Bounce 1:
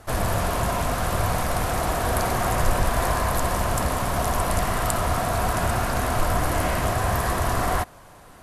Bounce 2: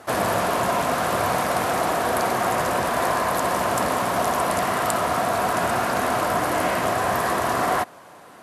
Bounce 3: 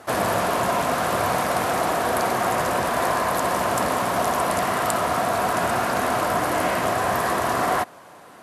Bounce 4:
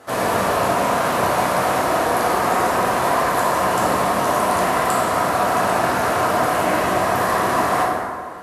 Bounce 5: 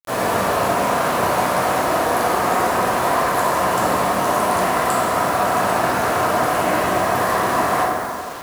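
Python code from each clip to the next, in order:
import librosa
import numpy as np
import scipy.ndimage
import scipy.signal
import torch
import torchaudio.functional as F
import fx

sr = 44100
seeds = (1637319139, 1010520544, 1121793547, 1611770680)

y1 = scipy.signal.sosfilt(scipy.signal.butter(2, 220.0, 'highpass', fs=sr, output='sos'), x)
y1 = fx.high_shelf(y1, sr, hz=4600.0, db=-5.5)
y1 = fx.rider(y1, sr, range_db=10, speed_s=0.5)
y1 = F.gain(torch.from_numpy(y1), 4.0).numpy()
y2 = y1
y3 = fx.rev_plate(y2, sr, seeds[0], rt60_s=1.9, hf_ratio=0.55, predelay_ms=0, drr_db=-5.5)
y3 = F.gain(torch.from_numpy(y3), -3.0).numpy()
y4 = fx.quant_dither(y3, sr, seeds[1], bits=6, dither='none')
y4 = y4 + 10.0 ** (-16.5 / 20.0) * np.pad(y4, (int(554 * sr / 1000.0), 0))[:len(y4)]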